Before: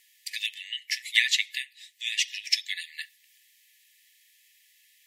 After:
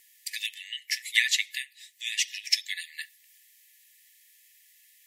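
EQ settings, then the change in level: peaking EQ 3.1 kHz -8 dB 2 oct; +5.5 dB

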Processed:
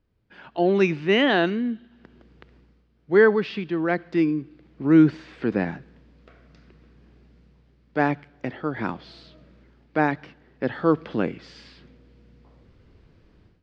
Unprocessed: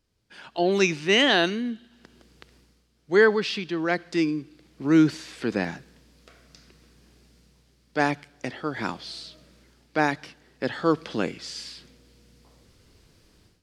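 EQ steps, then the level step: low-pass 2.4 kHz 12 dB/octave; bass shelf 420 Hz +4.5 dB; 0.0 dB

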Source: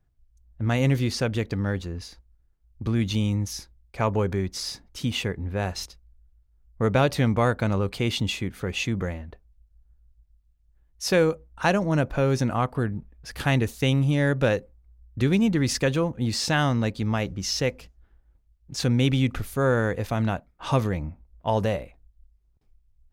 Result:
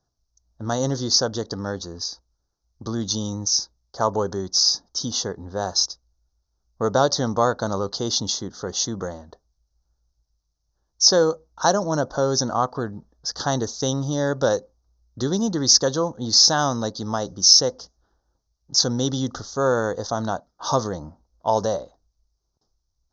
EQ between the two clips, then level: Butterworth band-stop 2.4 kHz, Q 0.6; steep low-pass 6.3 kHz 96 dB/octave; tilt EQ +4.5 dB/octave; +7.5 dB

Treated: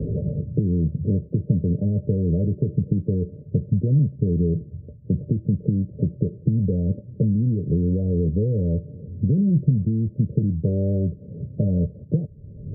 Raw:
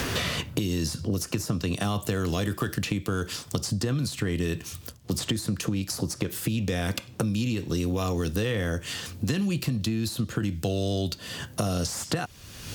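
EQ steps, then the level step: rippled Chebyshev low-pass 610 Hz, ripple 9 dB; bass shelf 280 Hz +9.5 dB; +4.0 dB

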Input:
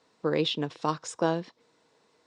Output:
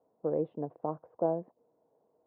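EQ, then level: four-pole ladder low-pass 790 Hz, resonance 50%; +2.0 dB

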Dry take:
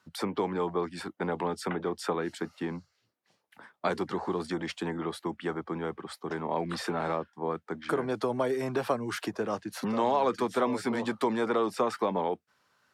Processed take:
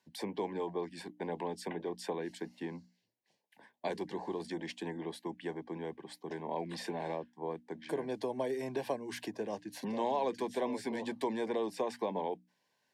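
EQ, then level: high-pass 130 Hz; Butterworth band-stop 1.3 kHz, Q 2.2; hum notches 60/120/180/240/300 Hz; -6.0 dB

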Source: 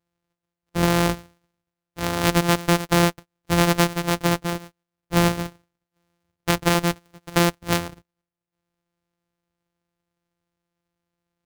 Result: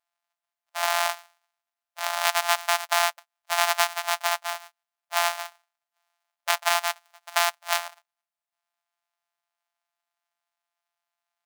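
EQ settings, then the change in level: brick-wall FIR high-pass 570 Hz; 0.0 dB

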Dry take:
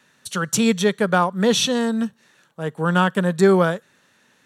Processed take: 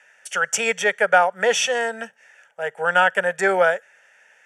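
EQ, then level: band-pass 660–6200 Hz; static phaser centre 1.1 kHz, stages 6; +8.5 dB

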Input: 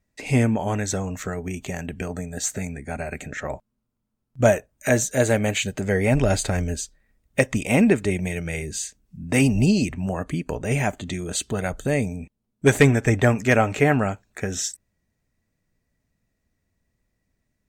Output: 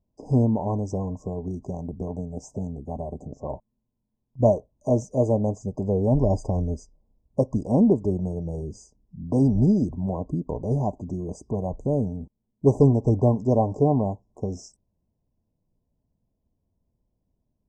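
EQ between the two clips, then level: brick-wall FIR band-stop 1.1–4.8 kHz; tape spacing loss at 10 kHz 30 dB; 0.0 dB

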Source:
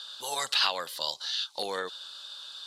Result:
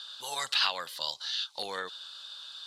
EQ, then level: peaking EQ 390 Hz -8.5 dB 2.9 oct; treble shelf 4.4 kHz -8 dB; +2.5 dB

